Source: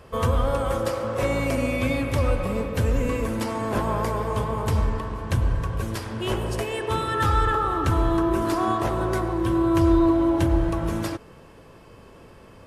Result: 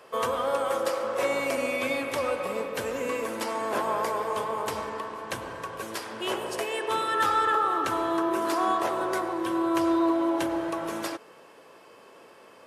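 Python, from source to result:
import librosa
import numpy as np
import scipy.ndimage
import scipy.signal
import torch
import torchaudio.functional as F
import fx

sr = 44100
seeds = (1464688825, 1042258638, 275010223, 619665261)

y = scipy.signal.sosfilt(scipy.signal.butter(2, 420.0, 'highpass', fs=sr, output='sos'), x)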